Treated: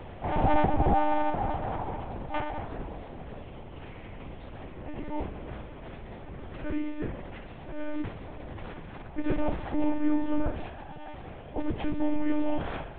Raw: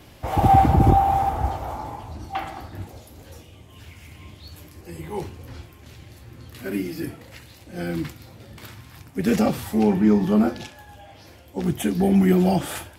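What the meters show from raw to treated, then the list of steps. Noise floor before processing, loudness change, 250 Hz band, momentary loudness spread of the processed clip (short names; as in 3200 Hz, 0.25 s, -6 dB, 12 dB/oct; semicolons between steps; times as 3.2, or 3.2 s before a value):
-48 dBFS, -10.5 dB, -9.0 dB, 18 LU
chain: per-bin compression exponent 0.6; BPF 140–2800 Hz; monotone LPC vocoder at 8 kHz 300 Hz; gain -8 dB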